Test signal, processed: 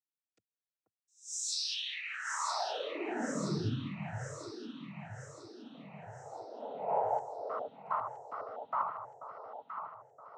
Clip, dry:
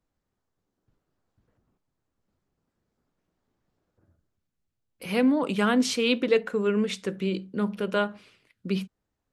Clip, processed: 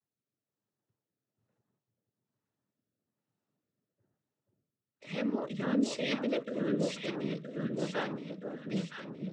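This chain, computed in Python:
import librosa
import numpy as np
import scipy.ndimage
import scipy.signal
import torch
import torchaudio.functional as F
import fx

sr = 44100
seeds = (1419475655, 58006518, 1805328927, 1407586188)

y = fx.noise_vocoder(x, sr, seeds[0], bands=12)
y = fx.echo_alternate(y, sr, ms=485, hz=1200.0, feedback_pct=72, wet_db=-3.5)
y = fx.rotary(y, sr, hz=1.1)
y = y * librosa.db_to_amplitude(-8.0)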